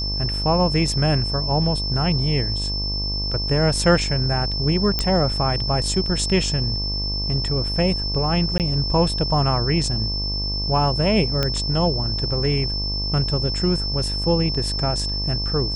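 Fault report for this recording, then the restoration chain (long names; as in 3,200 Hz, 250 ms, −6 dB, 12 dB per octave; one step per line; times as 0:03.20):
mains buzz 50 Hz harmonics 23 −27 dBFS
whistle 5,300 Hz −25 dBFS
0:04.99: click −7 dBFS
0:08.58–0:08.60: drop-out 18 ms
0:11.43: click −7 dBFS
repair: click removal
hum removal 50 Hz, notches 23
notch filter 5,300 Hz, Q 30
repair the gap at 0:08.58, 18 ms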